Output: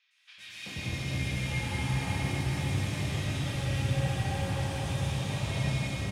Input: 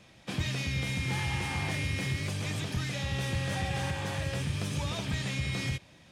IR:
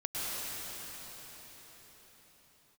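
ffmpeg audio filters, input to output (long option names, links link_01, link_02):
-filter_complex "[0:a]acrossover=split=1600|5100[link_01][link_02][link_03];[link_03]adelay=110[link_04];[link_01]adelay=380[link_05];[link_05][link_02][link_04]amix=inputs=3:normalize=0[link_06];[1:a]atrim=start_sample=2205[link_07];[link_06][link_07]afir=irnorm=-1:irlink=0,volume=-5.5dB"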